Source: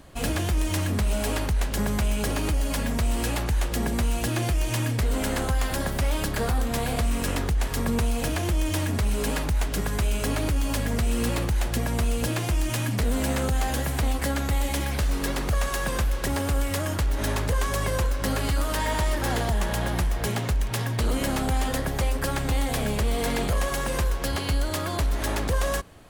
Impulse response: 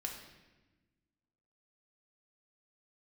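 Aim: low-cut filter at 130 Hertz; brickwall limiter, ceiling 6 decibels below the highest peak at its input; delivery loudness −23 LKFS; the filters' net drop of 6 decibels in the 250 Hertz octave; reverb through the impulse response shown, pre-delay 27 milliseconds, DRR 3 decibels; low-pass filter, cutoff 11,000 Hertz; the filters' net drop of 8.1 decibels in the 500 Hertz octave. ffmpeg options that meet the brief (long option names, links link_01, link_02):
-filter_complex "[0:a]highpass=130,lowpass=11000,equalizer=frequency=250:width_type=o:gain=-4.5,equalizer=frequency=500:width_type=o:gain=-9,alimiter=limit=-22dB:level=0:latency=1,asplit=2[link_01][link_02];[1:a]atrim=start_sample=2205,adelay=27[link_03];[link_02][link_03]afir=irnorm=-1:irlink=0,volume=-2.5dB[link_04];[link_01][link_04]amix=inputs=2:normalize=0,volume=8.5dB"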